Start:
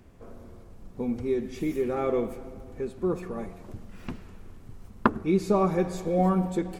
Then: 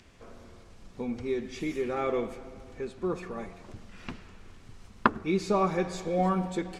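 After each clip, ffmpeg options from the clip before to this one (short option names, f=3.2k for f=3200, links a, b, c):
-filter_complex "[0:a]lowpass=6.5k,tiltshelf=f=970:g=-5,acrossover=split=1900[a][b];[b]acompressor=mode=upward:threshold=-58dB:ratio=2.5[c];[a][c]amix=inputs=2:normalize=0"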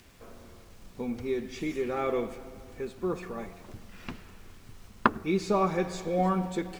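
-af "acrusher=bits=9:mix=0:aa=0.000001"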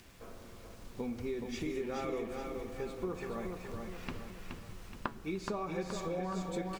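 -af "acompressor=threshold=-34dB:ratio=6,flanger=delay=5.9:depth=2.1:regen=-82:speed=0.43:shape=sinusoidal,aecho=1:1:423|846|1269|1692|2115|2538:0.562|0.264|0.124|0.0584|0.0274|0.0129,volume=3.5dB"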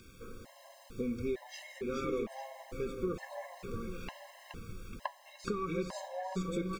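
-af "afftfilt=real='re*gt(sin(2*PI*1.1*pts/sr)*(1-2*mod(floor(b*sr/1024/540),2)),0)':imag='im*gt(sin(2*PI*1.1*pts/sr)*(1-2*mod(floor(b*sr/1024/540),2)),0)':win_size=1024:overlap=0.75,volume=3dB"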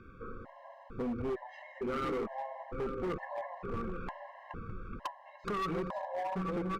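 -af "lowpass=f=1.3k:t=q:w=2,asoftclip=type=hard:threshold=-34dB,volume=2.5dB" -ar 48000 -c:a libopus -b:a 96k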